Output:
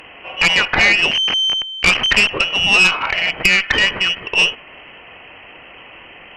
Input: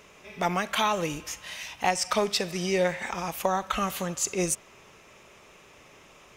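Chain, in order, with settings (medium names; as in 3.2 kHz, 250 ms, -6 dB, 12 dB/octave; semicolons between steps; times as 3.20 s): 1.11–2.29 s: send-on-delta sampling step -25 dBFS; frequency inversion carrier 3.1 kHz; Chebyshev shaper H 4 -9 dB, 5 -11 dB, 6 -23 dB, 8 -28 dB, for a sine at -9.5 dBFS; trim +6.5 dB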